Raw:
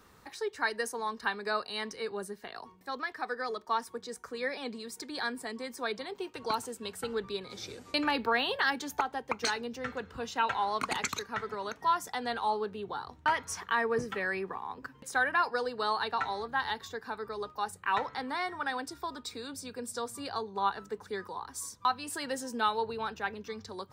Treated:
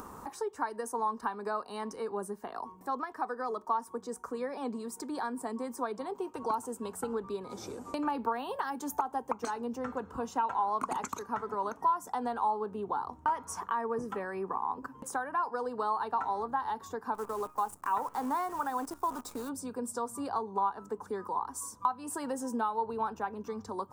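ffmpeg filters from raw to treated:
ffmpeg -i in.wav -filter_complex "[0:a]asettb=1/sr,asplit=3[link_01][link_02][link_03];[link_01]atrim=end=8.264[link_04];[link_02]atrim=start=8.26:end=9.31,asetpts=PTS-STARTPTS,afade=type=in:duration=0.004:curve=qsin,afade=type=out:start_time=1.046:duration=0.004:curve=qsin,highshelf=frequency=7300:gain=7.5[link_05];[link_03]atrim=start=9.306[link_06];[link_04][link_05]acrossfade=duration=0.004:curve1=hsin:curve2=qsin[link_07];[link_07][link_06]acrossfade=duration=0.004:curve1=qsin:curve2=hsin,asplit=3[link_08][link_09][link_10];[link_08]afade=type=out:start_time=17.14:duration=0.02[link_11];[link_09]acrusher=bits=8:dc=4:mix=0:aa=0.000001,afade=type=in:start_time=17.14:duration=0.02,afade=type=out:start_time=19.48:duration=0.02[link_12];[link_10]afade=type=in:start_time=19.48:duration=0.02[link_13];[link_11][link_12][link_13]amix=inputs=3:normalize=0,acompressor=threshold=-34dB:ratio=4,equalizer=frequency=125:width_type=o:width=1:gain=-3,equalizer=frequency=250:width_type=o:width=1:gain=6,equalizer=frequency=1000:width_type=o:width=1:gain=11,equalizer=frequency=2000:width_type=o:width=1:gain=-10,equalizer=frequency=4000:width_type=o:width=1:gain=-12,equalizer=frequency=8000:width_type=o:width=1:gain=3,acompressor=mode=upward:threshold=-37dB:ratio=2.5" out.wav

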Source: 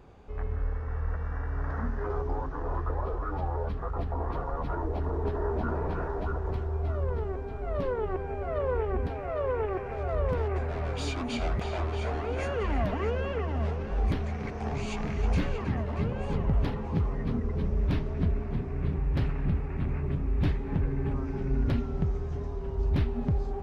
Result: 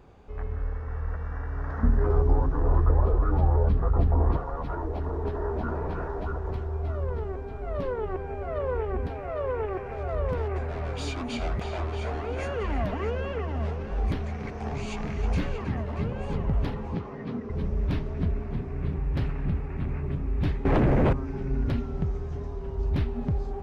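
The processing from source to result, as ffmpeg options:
ffmpeg -i in.wav -filter_complex "[0:a]asettb=1/sr,asplit=3[link_01][link_02][link_03];[link_01]atrim=end=1.834[link_04];[link_02]atrim=start=1.83:end=4.37,asetpts=PTS-STARTPTS,afade=type=in:duration=0.004:curve=qsin,afade=type=out:start_time=2.536:duration=0.004:curve=qsin,lowshelf=frequency=450:gain=11[link_05];[link_03]atrim=start=4.366[link_06];[link_04][link_05]acrossfade=duration=0.004:curve1=hsin:curve2=qsin[link_07];[link_07][link_06]acrossfade=duration=0.004:curve1=qsin:curve2=hsin,asettb=1/sr,asplit=3[link_08][link_09][link_10];[link_08]atrim=end=16.954[link_11];[link_09]atrim=start=16.95:end=17.5,asetpts=PTS-STARTPTS,afade=type=in:duration=0.004:curve=qsin,afade=type=out:start_time=0.546:duration=0.004:curve=qsin,highpass=170,lowpass=5900[link_12];[link_10]atrim=start=17.496[link_13];[link_11][link_12]acrossfade=duration=0.004:curve1=hsin:curve2=qsin[link_14];[link_14][link_13]acrossfade=duration=0.004:curve1=qsin:curve2=hsin,asettb=1/sr,asplit=3[link_15][link_16][link_17];[link_15]atrim=end=20.654[link_18];[link_16]atrim=start=20.65:end=21.13,asetpts=PTS-STARTPTS,afade=type=in:duration=0.004:curve=qsin,afade=type=out:start_time=0.476:duration=0.004:curve=qsin,aeval=exprs='0.141*sin(PI/2*3.98*val(0)/0.141)':channel_layout=same[link_19];[link_17]atrim=start=21.126[link_20];[link_18][link_19]acrossfade=duration=0.004:curve1=hsin:curve2=qsin[link_21];[link_21][link_20]acrossfade=duration=0.004:curve1=qsin:curve2=hsin" out.wav

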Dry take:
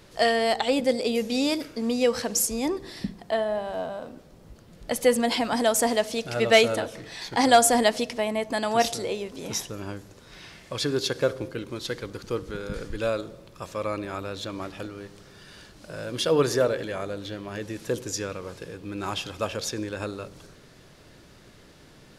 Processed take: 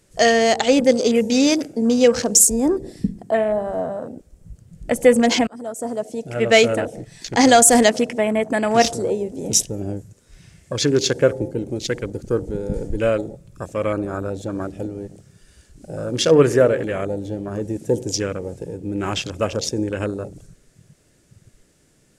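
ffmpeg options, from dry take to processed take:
ffmpeg -i in.wav -filter_complex "[0:a]asplit=2[link_01][link_02];[link_01]atrim=end=5.47,asetpts=PTS-STARTPTS,afade=type=out:start_time=5.466:duration=0.004:curve=hsin:silence=0.0749894[link_03];[link_02]atrim=start=5.47,asetpts=PTS-STARTPTS,afade=type=in:duration=1.58:silence=0.0749894[link_04];[link_03][link_04]concat=n=2:v=0:a=1,afwtdn=0.0158,equalizer=frequency=1000:width_type=o:width=1:gain=-7,equalizer=frequency=4000:width_type=o:width=1:gain=-7,equalizer=frequency=8000:width_type=o:width=1:gain=12,alimiter=level_in=10.5dB:limit=-1dB:release=50:level=0:latency=1,volume=-1dB" out.wav

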